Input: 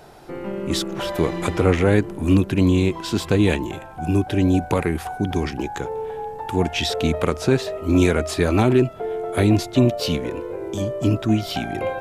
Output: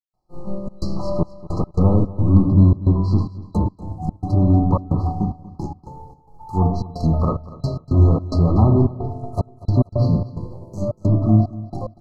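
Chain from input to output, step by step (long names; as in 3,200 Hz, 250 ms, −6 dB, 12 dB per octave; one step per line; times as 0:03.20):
running median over 5 samples
low-shelf EQ 120 Hz +9 dB
rectangular room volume 540 cubic metres, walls mixed, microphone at 0.96 metres
in parallel at −9.5 dB: hard clipping −15.5 dBFS, distortion −7 dB
on the sum: downward expander −14 dBFS
gate pattern ".xxxx.xxx..x.xx" 110 BPM −60 dB
brick-wall band-stop 1,300–4,000 Hz
treble cut that deepens with the level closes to 1,900 Hz, closed at −11.5 dBFS
parametric band 400 Hz −9.5 dB 1.2 octaves
on a send: repeating echo 240 ms, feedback 37%, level −18 dB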